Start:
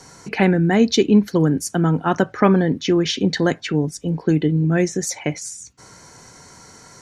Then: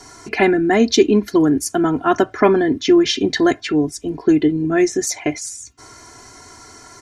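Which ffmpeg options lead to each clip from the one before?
ffmpeg -i in.wav -af "aecho=1:1:2.9:0.8,volume=1dB" out.wav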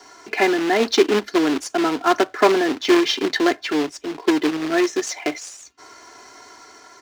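ffmpeg -i in.wav -filter_complex "[0:a]acrusher=bits=2:mode=log:mix=0:aa=0.000001,dynaudnorm=framelen=320:gausssize=5:maxgain=3.5dB,acrossover=split=290 6000:gain=0.112 1 0.158[link_01][link_02][link_03];[link_01][link_02][link_03]amix=inputs=3:normalize=0,volume=-2dB" out.wav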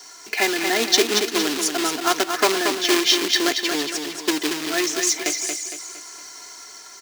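ffmpeg -i in.wav -filter_complex "[0:a]crystalizer=i=6.5:c=0,asplit=2[link_01][link_02];[link_02]aecho=0:1:230|460|690|920|1150:0.501|0.221|0.097|0.0427|0.0188[link_03];[link_01][link_03]amix=inputs=2:normalize=0,volume=-7dB" out.wav

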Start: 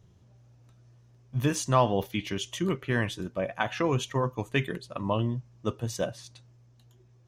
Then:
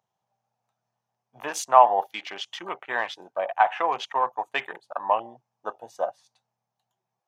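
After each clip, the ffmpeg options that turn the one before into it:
ffmpeg -i in.wav -af "afwtdn=0.01,highpass=frequency=790:width_type=q:width=4.9,volume=1.5dB" out.wav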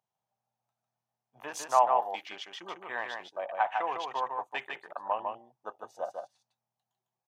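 ffmpeg -i in.wav -af "aecho=1:1:152:0.596,volume=-8.5dB" out.wav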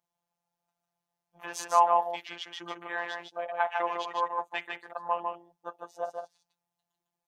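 ffmpeg -i in.wav -af "afftfilt=real='hypot(re,im)*cos(PI*b)':imag='0':win_size=1024:overlap=0.75,volume=5dB" out.wav

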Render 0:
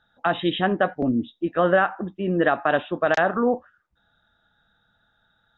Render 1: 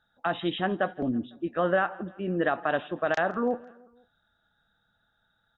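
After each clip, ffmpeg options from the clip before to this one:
ffmpeg -i in.wav -af "aecho=1:1:167|334|501:0.0708|0.0368|0.0191,volume=-6dB" out.wav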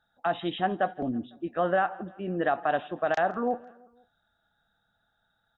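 ffmpeg -i in.wav -af "equalizer=frequency=740:width=4:gain=7,volume=-2.5dB" out.wav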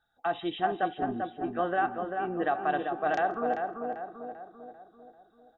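ffmpeg -i in.wav -filter_complex "[0:a]aecho=1:1:2.6:0.43,asplit=2[link_01][link_02];[link_02]adelay=392,lowpass=frequency=1700:poles=1,volume=-4.5dB,asplit=2[link_03][link_04];[link_04]adelay=392,lowpass=frequency=1700:poles=1,volume=0.53,asplit=2[link_05][link_06];[link_06]adelay=392,lowpass=frequency=1700:poles=1,volume=0.53,asplit=2[link_07][link_08];[link_08]adelay=392,lowpass=frequency=1700:poles=1,volume=0.53,asplit=2[link_09][link_10];[link_10]adelay=392,lowpass=frequency=1700:poles=1,volume=0.53,asplit=2[link_11][link_12];[link_12]adelay=392,lowpass=frequency=1700:poles=1,volume=0.53,asplit=2[link_13][link_14];[link_14]adelay=392,lowpass=frequency=1700:poles=1,volume=0.53[link_15];[link_01][link_03][link_05][link_07][link_09][link_11][link_13][link_15]amix=inputs=8:normalize=0,volume=-3.5dB" out.wav

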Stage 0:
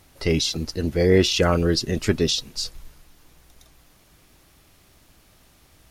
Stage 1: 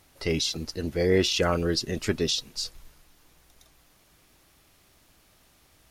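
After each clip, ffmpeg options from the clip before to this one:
ffmpeg -i in.wav -af "lowshelf=frequency=280:gain=-4.5,volume=-3.5dB" out.wav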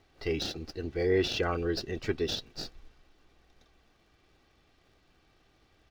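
ffmpeg -i in.wav -filter_complex "[0:a]aecho=1:1:2.6:0.49,acrossover=split=5400[link_01][link_02];[link_02]acrusher=samples=41:mix=1:aa=0.000001[link_03];[link_01][link_03]amix=inputs=2:normalize=0,volume=-6dB" out.wav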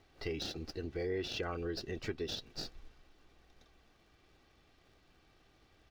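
ffmpeg -i in.wav -af "acompressor=threshold=-37dB:ratio=2.5,volume=-1dB" out.wav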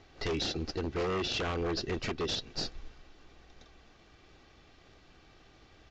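ffmpeg -i in.wav -af "aeval=exprs='0.0188*(abs(mod(val(0)/0.0188+3,4)-2)-1)':channel_layout=same,aresample=16000,aresample=44100,volume=8dB" out.wav

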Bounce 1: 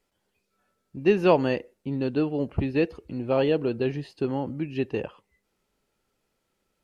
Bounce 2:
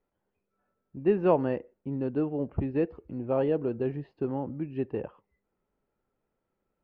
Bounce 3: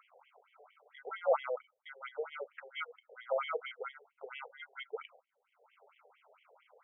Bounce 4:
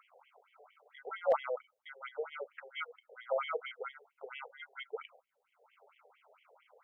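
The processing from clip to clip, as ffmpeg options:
ffmpeg -i in.wav -af "lowpass=1400,volume=-3.5dB" out.wav
ffmpeg -i in.wav -af "acompressor=mode=upward:threshold=-30dB:ratio=2.5,acrusher=samples=25:mix=1:aa=0.000001,afftfilt=real='re*between(b*sr/1024,560*pow(2600/560,0.5+0.5*sin(2*PI*4.4*pts/sr))/1.41,560*pow(2600/560,0.5+0.5*sin(2*PI*4.4*pts/sr))*1.41)':imag='im*between(b*sr/1024,560*pow(2600/560,0.5+0.5*sin(2*PI*4.4*pts/sr))/1.41,560*pow(2600/560,0.5+0.5*sin(2*PI*4.4*pts/sr))*1.41)':win_size=1024:overlap=0.75,volume=-1.5dB" out.wav
ffmpeg -i in.wav -af "asoftclip=type=hard:threshold=-19.5dB" out.wav

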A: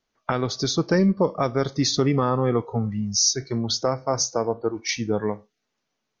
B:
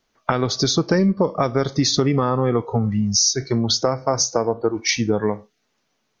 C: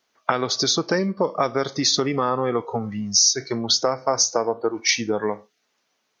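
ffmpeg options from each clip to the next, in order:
ffmpeg -i in.wav -af "acompressor=threshold=-24dB:ratio=3,volume=8dB" out.wav
ffmpeg -i in.wav -af "highpass=frequency=490:poles=1,volume=1dB" out.wav

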